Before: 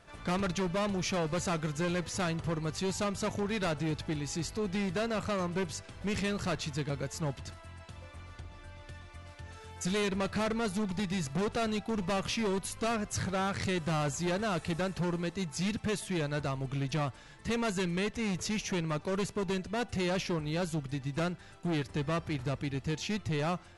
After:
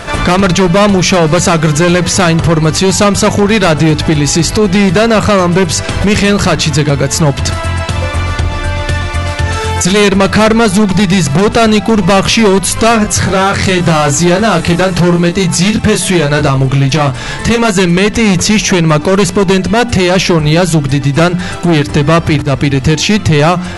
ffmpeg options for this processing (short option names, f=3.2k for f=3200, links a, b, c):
-filter_complex "[0:a]asettb=1/sr,asplit=3[a][b][c];[a]atrim=end=12.934[d];[b]atrim=start=12.93:end=17.71,asetpts=PTS-STARTPTS,afade=t=in:d=0.004:c=qsin,afade=t=out:st=4.776:d=0.004:c=qsin,asplit=2[e][f];[f]adelay=23,volume=-5.5dB[g];[e][g]amix=inputs=2:normalize=0,atrim=end_sample=210798[h];[c]atrim=start=17.706[i];[d][h]acrossfade=d=0.004:c1=hsin:c2=qsin[j];[j][i]acrossfade=d=0.004:c1=qsin:c2=hsin,asplit=2[k][l];[k]atrim=end=22.42,asetpts=PTS-STARTPTS,afade=t=out:st=22.416:d=0.004:c=hsin:silence=0.177828[m];[l]atrim=start=22.42,asetpts=PTS-STARTPTS,afade=t=in:d=0.48:silence=0.177828[n];[m][n]concat=n=2:v=0:a=1,bandreject=f=60:t=h:w=6,bandreject=f=120:t=h:w=6,bandreject=f=180:t=h:w=6,bandreject=f=240:t=h:w=6,bandreject=f=300:t=h:w=6,acompressor=threshold=-40dB:ratio=6,alimiter=level_in=35.5dB:limit=-1dB:release=50:level=0:latency=1,volume=-1dB"